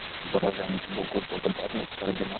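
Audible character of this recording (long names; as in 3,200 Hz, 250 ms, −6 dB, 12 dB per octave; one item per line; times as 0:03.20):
a buzz of ramps at a fixed pitch in blocks of 8 samples
chopped level 2.9 Hz, depth 65%, duty 45%
a quantiser's noise floor 6 bits, dither triangular
Opus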